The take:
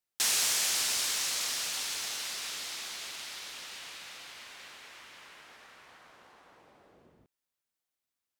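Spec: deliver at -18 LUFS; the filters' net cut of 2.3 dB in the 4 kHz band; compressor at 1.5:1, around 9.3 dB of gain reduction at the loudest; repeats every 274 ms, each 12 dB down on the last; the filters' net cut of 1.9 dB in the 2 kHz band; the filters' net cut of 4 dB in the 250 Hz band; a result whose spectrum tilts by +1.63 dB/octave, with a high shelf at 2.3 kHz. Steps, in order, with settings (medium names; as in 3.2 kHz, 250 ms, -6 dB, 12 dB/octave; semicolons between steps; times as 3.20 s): peaking EQ 250 Hz -5.5 dB; peaking EQ 2 kHz -3 dB; treble shelf 2.3 kHz +6 dB; peaking EQ 4 kHz -8.5 dB; compression 1.5:1, threshold -49 dBFS; feedback delay 274 ms, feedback 25%, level -12 dB; trim +19 dB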